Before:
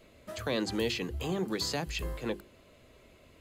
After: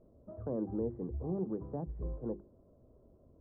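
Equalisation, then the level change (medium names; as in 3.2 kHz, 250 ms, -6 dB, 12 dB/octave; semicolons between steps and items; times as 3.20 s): Gaussian low-pass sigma 11 samples; distance through air 260 m; -1.5 dB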